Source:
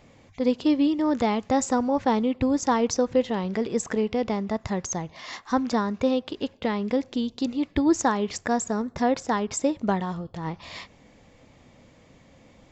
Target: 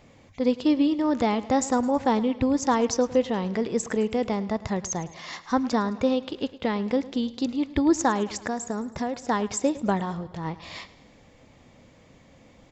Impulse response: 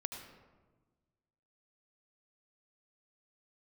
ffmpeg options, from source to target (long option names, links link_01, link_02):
-filter_complex "[0:a]asettb=1/sr,asplit=3[link_01][link_02][link_03];[link_01]atrim=end=8.234[link_04];[link_02]atrim=start=8.23:end=9.27,asetpts=PTS-STARTPTS,afade=type=in:duration=0.004:curve=qsin,afade=type=out:start_time=1.036:duration=0.004:curve=qsin,acompressor=threshold=-26dB:ratio=5[link_05];[link_03]atrim=start=9.266[link_06];[link_04][link_05]acrossfade=duration=0.004:curve1=hsin:curve2=qsin[link_07];[link_07][link_06]acrossfade=duration=0.004:curve1=qsin:curve2=hsin,aecho=1:1:107|214|321|428|535:0.126|0.0692|0.0381|0.0209|0.0115"